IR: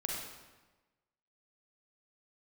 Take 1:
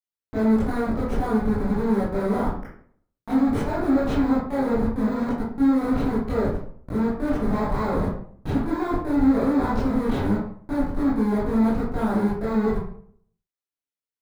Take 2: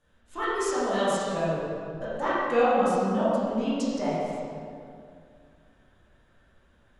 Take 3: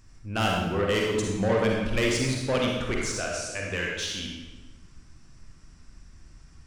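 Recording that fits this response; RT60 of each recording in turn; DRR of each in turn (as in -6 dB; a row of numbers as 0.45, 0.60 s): 3; 0.55, 2.3, 1.2 s; -9.0, -11.5, -2.0 dB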